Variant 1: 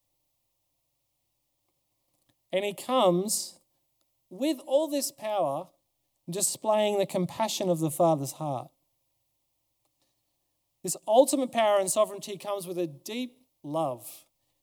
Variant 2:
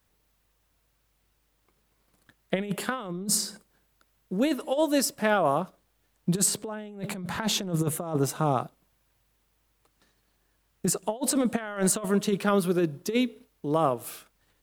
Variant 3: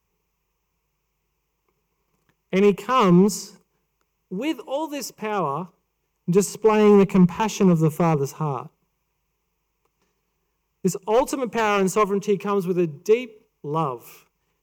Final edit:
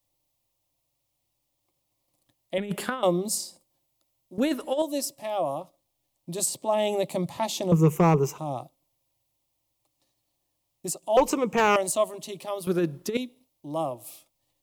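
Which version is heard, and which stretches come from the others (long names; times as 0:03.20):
1
0:02.58–0:03.03: punch in from 2
0:04.38–0:04.82: punch in from 2
0:07.72–0:08.38: punch in from 3
0:11.17–0:11.76: punch in from 3
0:12.67–0:13.17: punch in from 2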